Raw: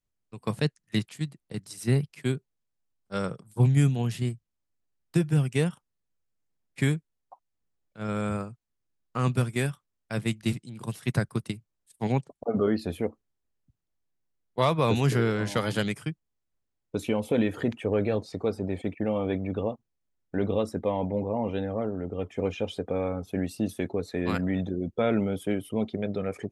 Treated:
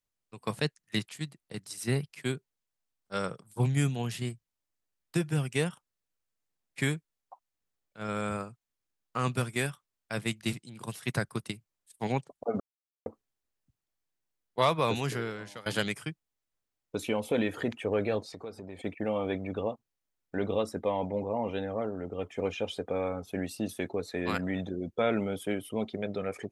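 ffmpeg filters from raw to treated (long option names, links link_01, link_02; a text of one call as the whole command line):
ffmpeg -i in.wav -filter_complex "[0:a]asettb=1/sr,asplit=3[link_01][link_02][link_03];[link_01]atrim=end=18.264[link_04];[link_02]atrim=start=18.26:end=18.79,asetpts=PTS-STARTPTS,afade=type=in:duration=0.004:curve=qsin,afade=type=out:start_time=0.526:duration=0.004:curve=qsin,acompressor=threshold=-38dB:ratio=2.5:attack=3.2:release=140:knee=1:detection=peak[link_05];[link_03]atrim=start=18.786[link_06];[link_04][link_05]acrossfade=duration=0.004:curve1=hsin:curve2=qsin[link_07];[link_07][link_06]acrossfade=duration=0.004:curve1=qsin:curve2=hsin,asplit=4[link_08][link_09][link_10][link_11];[link_08]atrim=end=12.6,asetpts=PTS-STARTPTS,afade=type=out:start_time=12.596:duration=0.004:curve=hsin[link_12];[link_09]atrim=start=12.6:end=13.06,asetpts=PTS-STARTPTS,volume=0[link_13];[link_10]atrim=start=13.06:end=15.66,asetpts=PTS-STARTPTS,afade=type=in:duration=0.004:curve=hsin,afade=type=out:start_time=1.64:duration=0.96:silence=0.0841395[link_14];[link_11]atrim=start=15.66,asetpts=PTS-STARTPTS,afade=type=in:duration=0.004:curve=hsin:silence=0.0841395[link_15];[link_12][link_13][link_14][link_15]concat=n=4:v=0:a=1,lowshelf=frequency=390:gain=-8.5,volume=1dB" out.wav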